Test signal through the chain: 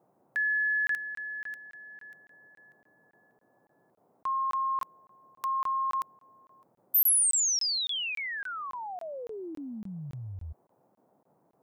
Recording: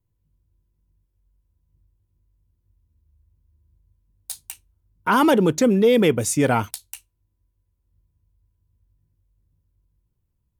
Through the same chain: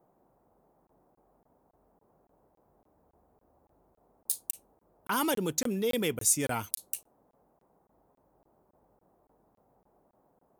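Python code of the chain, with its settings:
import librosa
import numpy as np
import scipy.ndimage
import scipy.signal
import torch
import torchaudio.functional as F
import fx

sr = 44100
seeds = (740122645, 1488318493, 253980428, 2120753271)

y = fx.dmg_noise_band(x, sr, seeds[0], low_hz=120.0, high_hz=850.0, level_db=-55.0)
y = scipy.signal.lfilter([1.0, -0.8], [1.0], y)
y = fx.buffer_crackle(y, sr, first_s=0.87, period_s=0.28, block=1024, kind='zero')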